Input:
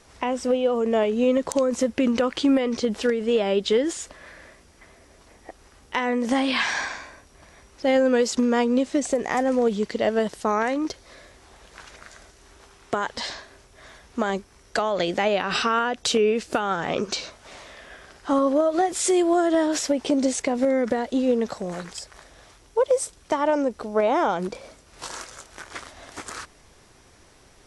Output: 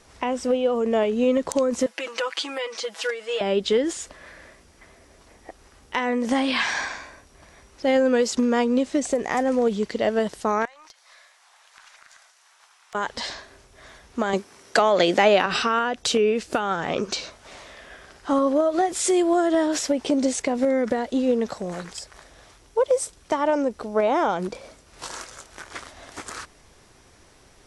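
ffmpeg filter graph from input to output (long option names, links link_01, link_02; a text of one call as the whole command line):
ffmpeg -i in.wav -filter_complex "[0:a]asettb=1/sr,asplit=3[link_01][link_02][link_03];[link_01]atrim=end=1.864[link_04];[link_02]atrim=start=1.86:end=3.41,asetpts=PTS-STARTPTS,afade=type=in:duration=0.004:curve=qsin,afade=type=out:start_time=1.546:duration=0.004:curve=qsin,highpass=870,aecho=1:1:6.1:0.92,atrim=end_sample=68355[link_05];[link_03]atrim=start=3.406[link_06];[link_04][link_05]acrossfade=duration=0.004:curve1=hsin:curve2=qsin[link_07];[link_07][link_06]acrossfade=duration=0.004:curve1=qsin:curve2=hsin,asettb=1/sr,asplit=3[link_08][link_09][link_10];[link_08]atrim=end=10.654[link_11];[link_09]atrim=start=10.65:end=12.95,asetpts=PTS-STARTPTS,afade=type=in:duration=0.004:curve=qsin,afade=type=out:start_time=2.296:duration=0.004:curve=qsin,highpass=frequency=800:width=0.5412,highpass=frequency=800:width=1.3066,acompressor=threshold=-42dB:ratio=6:attack=3.2:release=140:knee=1:detection=peak,aeval=exprs='(tanh(14.1*val(0)+0.55)-tanh(0.55))/14.1':channel_layout=same[link_12];[link_10]atrim=start=12.946[link_13];[link_11][link_12]acrossfade=duration=0.004:curve1=hsin:curve2=qsin[link_14];[link_14][link_13]acrossfade=duration=0.004:curve1=qsin:curve2=hsin,asettb=1/sr,asplit=3[link_15][link_16][link_17];[link_15]atrim=end=14.334[link_18];[link_16]atrim=start=14.33:end=15.46,asetpts=PTS-STARTPTS,afade=type=in:duration=0.004:curve=qsin,afade=type=out:start_time=1.126:duration=0.004:curve=qsin,highpass=190,acontrast=50[link_19];[link_17]atrim=start=15.456[link_20];[link_18][link_19]acrossfade=duration=0.004:curve1=hsin:curve2=qsin[link_21];[link_21][link_20]acrossfade=duration=0.004:curve1=qsin:curve2=hsin" out.wav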